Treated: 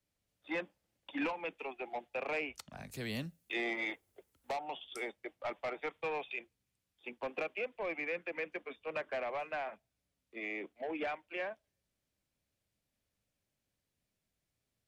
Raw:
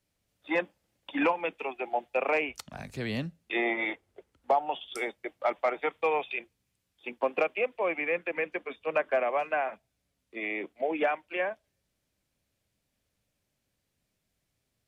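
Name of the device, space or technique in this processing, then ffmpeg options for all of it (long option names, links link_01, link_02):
one-band saturation: -filter_complex "[0:a]acrossover=split=280|2100[link_01][link_02][link_03];[link_02]asoftclip=type=tanh:threshold=-28dB[link_04];[link_01][link_04][link_03]amix=inputs=3:normalize=0,asettb=1/sr,asplit=3[link_05][link_06][link_07];[link_05]atrim=end=2.914[link_08];[link_06]atrim=start=2.91:end=4.57,asetpts=PTS-STARTPTS,afade=type=in:duration=0.004:curve=qsin,afade=type=out:start_time=1.656:duration=0.004:curve=qsin,aemphasis=mode=production:type=50fm[link_09];[link_07]atrim=start=4.566[link_10];[link_08][link_09]acrossfade=duration=0.004:curve1=hsin:curve2=qsin[link_11];[link_11][link_10]acrossfade=duration=0.004:curve1=qsin:curve2=hsin,volume=-6.5dB"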